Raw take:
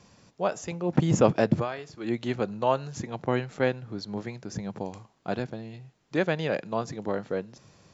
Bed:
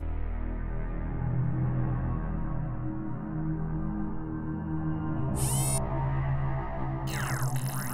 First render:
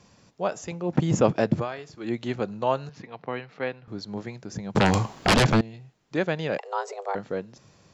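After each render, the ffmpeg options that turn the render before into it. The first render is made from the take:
ffmpeg -i in.wav -filter_complex "[0:a]asettb=1/sr,asplit=3[link_01][link_02][link_03];[link_01]atrim=end=2.894[link_04];[link_02]atrim=start=2.89:end=3.88,asetpts=PTS-STARTPTS,afade=type=in:duration=0.004:curve=qsin,afade=type=out:start_time=0.986:duration=0.004:curve=qsin,highpass=220,equalizer=frequency=230:width_type=q:width=4:gain=-7,equalizer=frequency=350:width_type=q:width=4:gain=-9,equalizer=frequency=580:width_type=q:width=4:gain=-6,equalizer=frequency=840:width_type=q:width=4:gain=-4,equalizer=frequency=1500:width_type=q:width=4:gain=-4,equalizer=frequency=3400:width_type=q:width=4:gain=-5,lowpass=frequency=4200:width=0.5412,lowpass=frequency=4200:width=1.3066[link_05];[link_03]atrim=start=3.876[link_06];[link_04][link_05]acrossfade=duration=0.004:curve1=hsin:curve2=qsin[link_07];[link_07][link_06]acrossfade=duration=0.004:curve1=qsin:curve2=hsin,asettb=1/sr,asplit=3[link_08][link_09][link_10];[link_08]atrim=end=4.754[link_11];[link_09]atrim=start=4.75:end=5.61,asetpts=PTS-STARTPTS,afade=type=in:duration=0.004:curve=qsin,afade=type=out:start_time=0.856:duration=0.004:curve=qsin,aeval=exprs='0.2*sin(PI/2*8.91*val(0)/0.2)':channel_layout=same[link_12];[link_10]atrim=start=5.606[link_13];[link_11][link_12]acrossfade=duration=0.004:curve1=hsin:curve2=qsin[link_14];[link_14][link_13]acrossfade=duration=0.004:curve1=qsin:curve2=hsin,asettb=1/sr,asplit=3[link_15][link_16][link_17];[link_15]atrim=end=6.584[link_18];[link_16]atrim=start=6.58:end=7.15,asetpts=PTS-STARTPTS,afade=type=in:duration=0.004:curve=qsin,afade=type=out:start_time=0.566:duration=0.004:curve=qsin,afreqshift=290[link_19];[link_17]atrim=start=7.146[link_20];[link_18][link_19]acrossfade=duration=0.004:curve1=hsin:curve2=qsin[link_21];[link_21][link_20]acrossfade=duration=0.004:curve1=qsin:curve2=hsin" out.wav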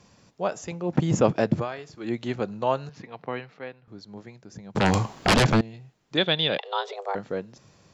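ffmpeg -i in.wav -filter_complex "[0:a]asettb=1/sr,asplit=3[link_01][link_02][link_03];[link_01]atrim=end=6.174[link_04];[link_02]atrim=start=6.17:end=6.96,asetpts=PTS-STARTPTS,afade=type=in:duration=0.004:curve=qsin,afade=type=out:start_time=0.786:duration=0.004:curve=qsin,lowpass=frequency=3500:width_type=q:width=15[link_05];[link_03]atrim=start=6.956[link_06];[link_04][link_05]acrossfade=duration=0.004:curve1=hsin:curve2=qsin[link_07];[link_07][link_06]acrossfade=duration=0.004:curve1=qsin:curve2=hsin,asplit=3[link_08][link_09][link_10];[link_08]atrim=end=3.61,asetpts=PTS-STARTPTS,afade=type=out:start_time=3.47:duration=0.14:silence=0.398107[link_11];[link_09]atrim=start=3.61:end=4.73,asetpts=PTS-STARTPTS,volume=-8dB[link_12];[link_10]atrim=start=4.73,asetpts=PTS-STARTPTS,afade=type=in:duration=0.14:silence=0.398107[link_13];[link_11][link_12][link_13]concat=n=3:v=0:a=1" out.wav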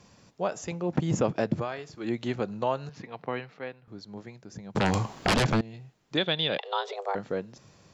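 ffmpeg -i in.wav -af "acompressor=threshold=-25dB:ratio=2" out.wav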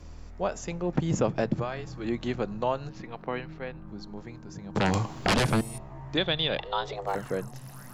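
ffmpeg -i in.wav -i bed.wav -filter_complex "[1:a]volume=-12.5dB[link_01];[0:a][link_01]amix=inputs=2:normalize=0" out.wav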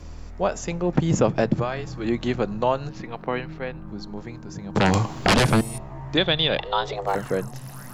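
ffmpeg -i in.wav -af "volume=6dB" out.wav

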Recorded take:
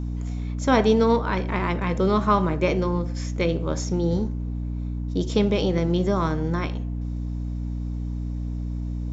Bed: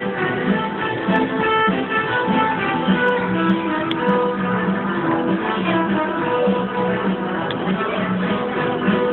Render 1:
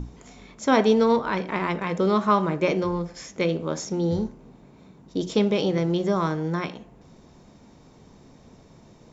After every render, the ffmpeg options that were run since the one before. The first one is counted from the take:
ffmpeg -i in.wav -af "bandreject=frequency=60:width_type=h:width=6,bandreject=frequency=120:width_type=h:width=6,bandreject=frequency=180:width_type=h:width=6,bandreject=frequency=240:width_type=h:width=6,bandreject=frequency=300:width_type=h:width=6" out.wav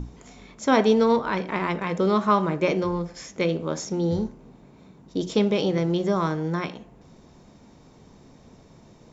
ffmpeg -i in.wav -af anull out.wav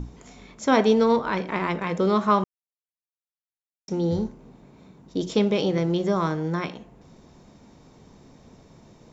ffmpeg -i in.wav -filter_complex "[0:a]asplit=3[link_01][link_02][link_03];[link_01]atrim=end=2.44,asetpts=PTS-STARTPTS,afade=type=out:start_time=2.436:duration=0.004:curve=hsin[link_04];[link_02]atrim=start=2.44:end=3.88,asetpts=PTS-STARTPTS,volume=0[link_05];[link_03]atrim=start=3.88,asetpts=PTS-STARTPTS,afade=type=in:duration=0.004:curve=hsin[link_06];[link_04][link_05][link_06]concat=n=3:v=0:a=1" out.wav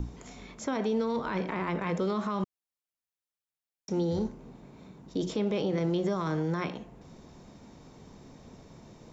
ffmpeg -i in.wav -filter_complex "[0:a]acrossover=split=320|2300[link_01][link_02][link_03];[link_01]acompressor=threshold=-28dB:ratio=4[link_04];[link_02]acompressor=threshold=-27dB:ratio=4[link_05];[link_03]acompressor=threshold=-43dB:ratio=4[link_06];[link_04][link_05][link_06]amix=inputs=3:normalize=0,alimiter=limit=-21.5dB:level=0:latency=1:release=22" out.wav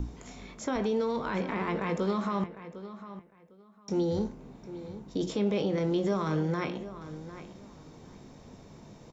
ffmpeg -i in.wav -filter_complex "[0:a]asplit=2[link_01][link_02];[link_02]adelay=20,volume=-10.5dB[link_03];[link_01][link_03]amix=inputs=2:normalize=0,asplit=2[link_04][link_05];[link_05]adelay=754,lowpass=frequency=3900:poles=1,volume=-13.5dB,asplit=2[link_06][link_07];[link_07]adelay=754,lowpass=frequency=3900:poles=1,volume=0.2[link_08];[link_04][link_06][link_08]amix=inputs=3:normalize=0" out.wav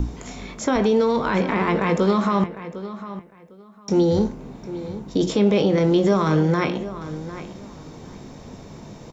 ffmpeg -i in.wav -af "volume=10.5dB" out.wav

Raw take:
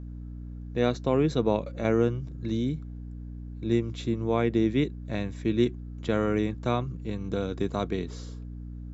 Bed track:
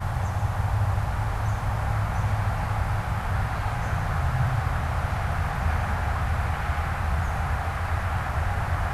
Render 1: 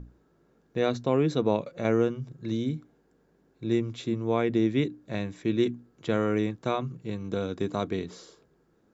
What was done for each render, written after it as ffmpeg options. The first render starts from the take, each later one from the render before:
ffmpeg -i in.wav -af "bandreject=frequency=60:width_type=h:width=6,bandreject=frequency=120:width_type=h:width=6,bandreject=frequency=180:width_type=h:width=6,bandreject=frequency=240:width_type=h:width=6,bandreject=frequency=300:width_type=h:width=6" out.wav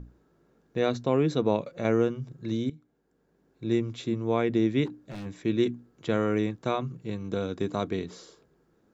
ffmpeg -i in.wav -filter_complex "[0:a]asplit=3[link_01][link_02][link_03];[link_01]afade=type=out:start_time=4.85:duration=0.02[link_04];[link_02]volume=35.5dB,asoftclip=hard,volume=-35.5dB,afade=type=in:start_time=4.85:duration=0.02,afade=type=out:start_time=5.25:duration=0.02[link_05];[link_03]afade=type=in:start_time=5.25:duration=0.02[link_06];[link_04][link_05][link_06]amix=inputs=3:normalize=0,asplit=2[link_07][link_08];[link_07]atrim=end=2.7,asetpts=PTS-STARTPTS,afade=type=out:start_time=2.696:duration=0.004:curve=hsin:silence=0.149624[link_09];[link_08]atrim=start=2.7,asetpts=PTS-STARTPTS,afade=type=in:duration=0.99:silence=0.149624[link_10];[link_09][link_10]concat=n=2:v=0:a=1" out.wav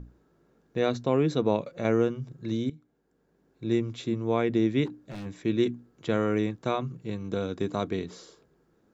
ffmpeg -i in.wav -af anull out.wav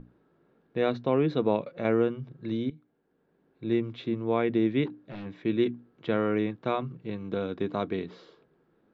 ffmpeg -i in.wav -af "lowpass=frequency=3700:width=0.5412,lowpass=frequency=3700:width=1.3066,equalizer=frequency=61:width_type=o:width=1.1:gain=-13" out.wav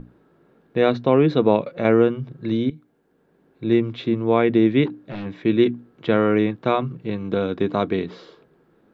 ffmpeg -i in.wav -af "volume=8.5dB" out.wav

